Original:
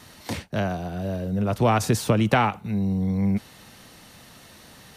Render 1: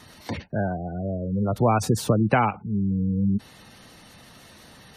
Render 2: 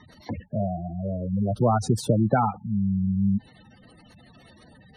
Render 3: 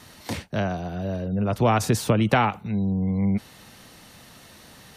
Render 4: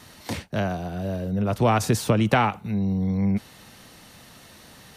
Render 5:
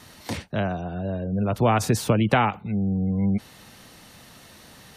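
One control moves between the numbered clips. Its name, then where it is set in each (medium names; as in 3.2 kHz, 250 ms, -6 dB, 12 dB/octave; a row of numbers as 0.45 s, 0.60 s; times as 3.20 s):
spectral gate, under each frame's peak: -20 dB, -10 dB, -45 dB, -60 dB, -35 dB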